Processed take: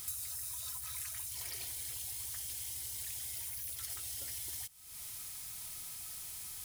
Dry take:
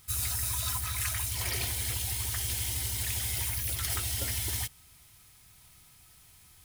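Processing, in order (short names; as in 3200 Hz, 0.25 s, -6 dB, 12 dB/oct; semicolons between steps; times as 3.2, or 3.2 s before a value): tone controls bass -6 dB, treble +8 dB; compressor 12:1, threshold -46 dBFS, peak gain reduction 24 dB; gain +6.5 dB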